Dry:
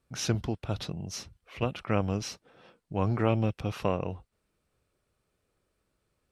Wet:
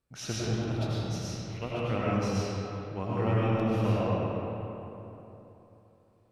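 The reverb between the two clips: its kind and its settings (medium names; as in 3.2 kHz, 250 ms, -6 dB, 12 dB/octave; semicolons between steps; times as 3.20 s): algorithmic reverb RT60 3.3 s, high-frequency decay 0.55×, pre-delay 60 ms, DRR -8 dB; trim -7.5 dB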